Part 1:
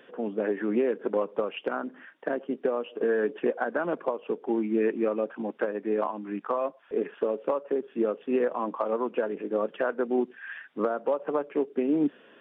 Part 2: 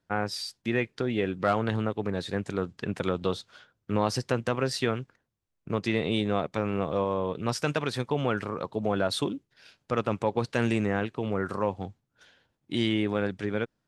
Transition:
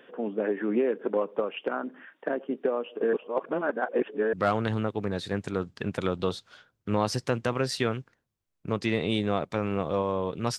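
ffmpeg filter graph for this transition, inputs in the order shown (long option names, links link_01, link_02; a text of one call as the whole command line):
ffmpeg -i cue0.wav -i cue1.wav -filter_complex "[0:a]apad=whole_dur=10.58,atrim=end=10.58,asplit=2[link_01][link_02];[link_01]atrim=end=3.132[link_03];[link_02]atrim=start=3.128:end=4.332,asetpts=PTS-STARTPTS,areverse[link_04];[1:a]atrim=start=1.348:end=7.6[link_05];[link_03][link_04]acrossfade=duration=0.004:curve1=hsin:curve2=hsin[link_06];[link_06][link_05]acrossfade=duration=0.004:curve1=hsin:curve2=hsin" out.wav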